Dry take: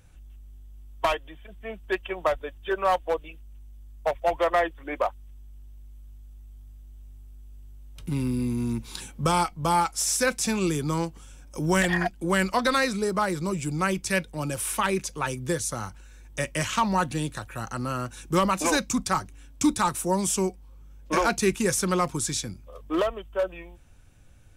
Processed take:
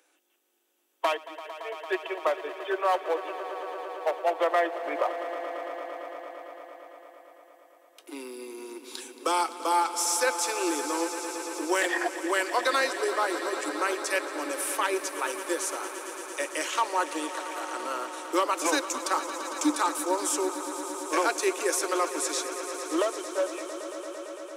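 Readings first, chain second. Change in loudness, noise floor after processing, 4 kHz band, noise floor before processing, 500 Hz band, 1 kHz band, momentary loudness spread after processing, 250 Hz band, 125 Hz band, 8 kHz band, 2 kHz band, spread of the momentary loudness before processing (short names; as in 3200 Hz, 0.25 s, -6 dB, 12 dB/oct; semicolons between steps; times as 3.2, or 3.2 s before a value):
-2.5 dB, -59 dBFS, -1.0 dB, -48 dBFS, -1.0 dB, -1.0 dB, 13 LU, -6.0 dB, under -40 dB, -1.0 dB, -1.0 dB, 10 LU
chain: steep high-pass 290 Hz 96 dB/oct; on a send: swelling echo 0.113 s, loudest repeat 5, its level -15 dB; on the sum: gain -2 dB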